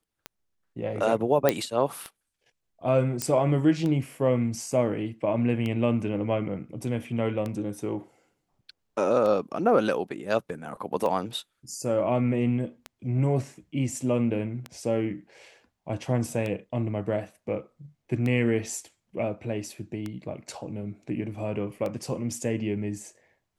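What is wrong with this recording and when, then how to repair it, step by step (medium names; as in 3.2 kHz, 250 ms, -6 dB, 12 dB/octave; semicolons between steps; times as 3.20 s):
tick 33 1/3 rpm -19 dBFS
1.49 s: pop -7 dBFS
3.22 s: pop -11 dBFS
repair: de-click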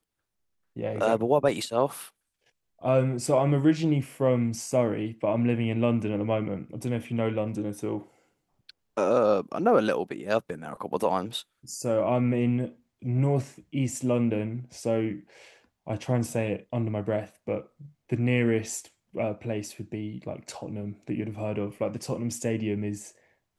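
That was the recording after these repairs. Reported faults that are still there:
nothing left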